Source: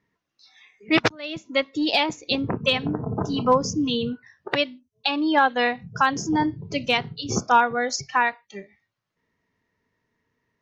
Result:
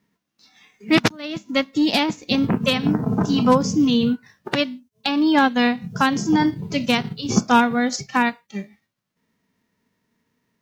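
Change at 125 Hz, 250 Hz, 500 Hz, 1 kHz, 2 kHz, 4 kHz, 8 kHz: +5.5 dB, +7.5 dB, +1.0 dB, 0.0 dB, +0.5 dB, +1.5 dB, no reading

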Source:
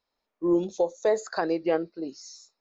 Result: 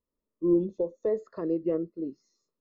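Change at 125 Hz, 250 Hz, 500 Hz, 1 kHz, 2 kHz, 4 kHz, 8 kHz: +2.5 dB, 0.0 dB, -3.0 dB, -16.0 dB, under -15 dB, under -20 dB, no reading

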